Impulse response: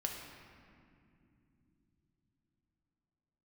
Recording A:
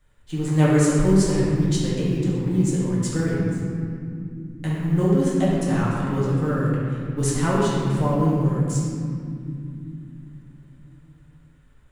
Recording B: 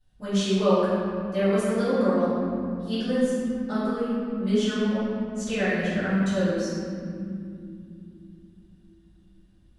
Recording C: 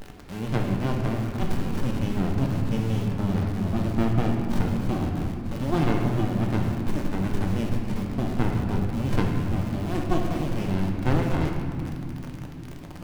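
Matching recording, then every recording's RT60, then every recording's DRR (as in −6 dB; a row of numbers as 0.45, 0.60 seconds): C; non-exponential decay, non-exponential decay, non-exponential decay; −7.5, −17.0, 0.5 decibels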